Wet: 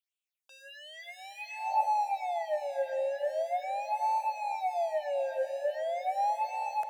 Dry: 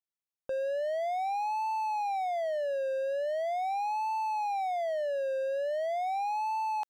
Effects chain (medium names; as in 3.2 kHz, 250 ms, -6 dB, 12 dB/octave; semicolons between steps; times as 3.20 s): phase shifter stages 6, 1.4 Hz, lowest notch 120–1600 Hz; echo that smears into a reverb 455 ms, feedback 47%, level -10.5 dB; high-pass sweep 2.5 kHz -> 120 Hz, 1.48–2.15 s; trim +2.5 dB